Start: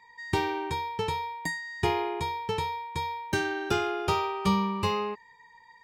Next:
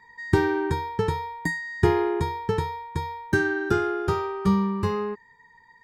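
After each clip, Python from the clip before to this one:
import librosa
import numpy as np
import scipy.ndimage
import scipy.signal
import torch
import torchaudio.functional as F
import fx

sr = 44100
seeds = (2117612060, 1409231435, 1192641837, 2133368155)

y = fx.high_shelf_res(x, sr, hz=1900.0, db=-9.5, q=3.0)
y = fx.rider(y, sr, range_db=10, speed_s=2.0)
y = fx.band_shelf(y, sr, hz=840.0, db=-11.0, octaves=1.7)
y = y * librosa.db_to_amplitude(7.0)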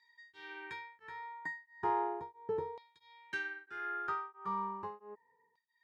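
y = fx.filter_lfo_bandpass(x, sr, shape='saw_down', hz=0.36, low_hz=460.0, high_hz=4200.0, q=2.9)
y = y * np.abs(np.cos(np.pi * 1.5 * np.arange(len(y)) / sr))
y = y * librosa.db_to_amplitude(-1.5)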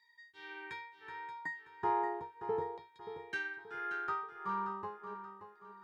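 y = fx.echo_feedback(x, sr, ms=579, feedback_pct=39, wet_db=-10.5)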